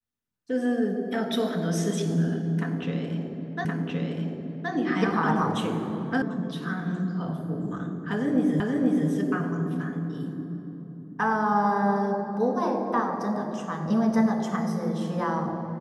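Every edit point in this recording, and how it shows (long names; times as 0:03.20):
0:03.65: the same again, the last 1.07 s
0:06.22: cut off before it has died away
0:08.60: the same again, the last 0.48 s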